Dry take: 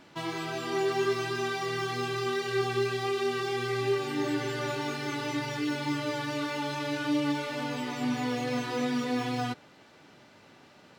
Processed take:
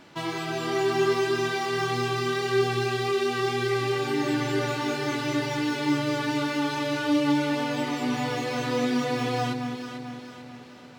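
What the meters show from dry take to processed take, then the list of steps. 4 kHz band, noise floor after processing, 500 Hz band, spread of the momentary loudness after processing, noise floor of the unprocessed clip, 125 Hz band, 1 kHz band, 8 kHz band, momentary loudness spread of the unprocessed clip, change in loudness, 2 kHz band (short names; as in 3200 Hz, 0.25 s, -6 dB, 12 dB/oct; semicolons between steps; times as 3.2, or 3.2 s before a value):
+4.0 dB, -45 dBFS, +4.5 dB, 8 LU, -56 dBFS, +5.0 dB, +4.5 dB, +4.0 dB, 4 LU, +4.5 dB, +4.0 dB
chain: echo with dull and thin repeats by turns 0.221 s, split 990 Hz, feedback 69%, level -5.5 dB; gain +3.5 dB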